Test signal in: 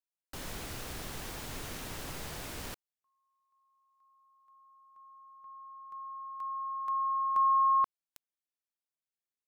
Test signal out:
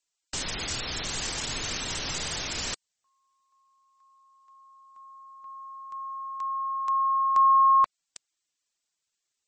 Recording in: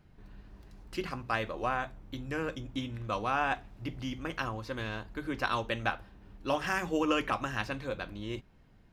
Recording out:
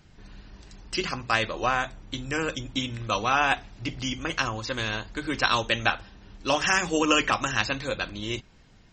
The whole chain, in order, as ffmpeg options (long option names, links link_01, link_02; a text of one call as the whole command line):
ffmpeg -i in.wav -af "crystalizer=i=4.5:c=0,volume=5dB" -ar 48000 -c:a libmp3lame -b:a 32k out.mp3